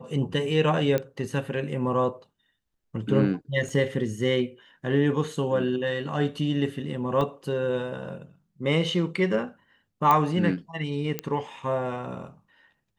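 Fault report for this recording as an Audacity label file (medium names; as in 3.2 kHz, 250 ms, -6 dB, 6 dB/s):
0.980000	0.980000	pop -14 dBFS
3.690000	3.690000	dropout 3.1 ms
7.210000	7.210000	dropout 2.4 ms
10.110000	10.110000	pop -9 dBFS
11.190000	11.190000	pop -12 dBFS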